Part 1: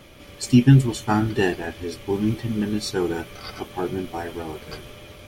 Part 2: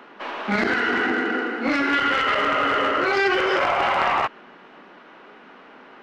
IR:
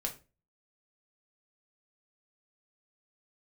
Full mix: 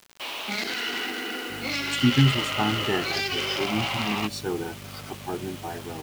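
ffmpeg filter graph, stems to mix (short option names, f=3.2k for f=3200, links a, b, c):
-filter_complex "[0:a]aeval=exprs='val(0)+0.0282*(sin(2*PI*50*n/s)+sin(2*PI*2*50*n/s)/2+sin(2*PI*3*50*n/s)/3+sin(2*PI*4*50*n/s)/4+sin(2*PI*5*50*n/s)/5)':c=same,adelay=1500,volume=-6dB[a];[1:a]acompressor=threshold=-21dB:ratio=6,aexciter=amount=8.4:drive=3.5:freq=2.4k,volume=-9dB[b];[a][b]amix=inputs=2:normalize=0,highpass=f=80:w=0.5412,highpass=f=80:w=1.3066,equalizer=f=810:t=o:w=0.8:g=2.5,acrusher=bits=6:mix=0:aa=0.000001"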